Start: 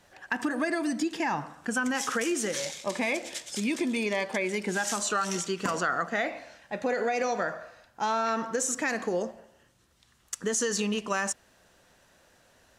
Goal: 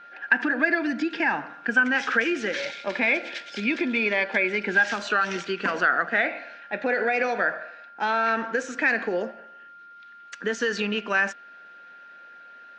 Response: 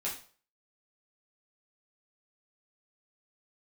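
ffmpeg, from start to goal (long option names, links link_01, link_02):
-af "highpass=frequency=200:width=0.5412,highpass=frequency=200:width=1.3066,equalizer=frequency=1100:width_type=q:width=4:gain=-5,equalizer=frequency=1600:width_type=q:width=4:gain=10,equalizer=frequency=2400:width_type=q:width=4:gain=7,lowpass=frequency=4500:width=0.5412,lowpass=frequency=4500:width=1.3066,aeval=exprs='val(0)+0.00447*sin(2*PI*1400*n/s)':channel_layout=same,volume=2.5dB" -ar 22050 -c:a nellymoser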